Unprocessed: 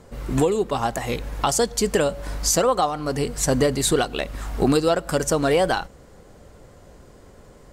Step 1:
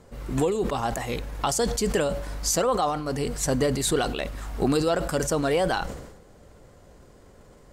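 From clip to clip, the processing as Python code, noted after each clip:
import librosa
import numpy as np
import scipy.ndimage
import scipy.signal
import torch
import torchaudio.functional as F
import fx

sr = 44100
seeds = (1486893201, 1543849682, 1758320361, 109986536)

y = fx.sustainer(x, sr, db_per_s=57.0)
y = F.gain(torch.from_numpy(y), -4.5).numpy()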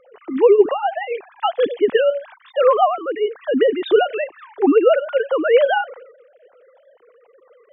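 y = fx.sine_speech(x, sr)
y = F.gain(torch.from_numpy(y), 8.0).numpy()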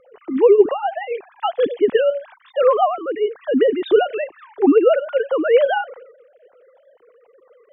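y = fx.low_shelf(x, sr, hz=400.0, db=7.0)
y = F.gain(torch.from_numpy(y), -3.0).numpy()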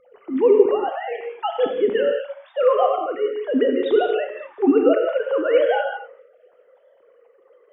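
y = fx.rev_gated(x, sr, seeds[0], gate_ms=250, shape='flat', drr_db=2.5)
y = F.gain(torch.from_numpy(y), -4.0).numpy()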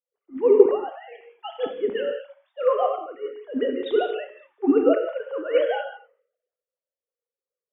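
y = fx.band_widen(x, sr, depth_pct=100)
y = F.gain(torch.from_numpy(y), -6.0).numpy()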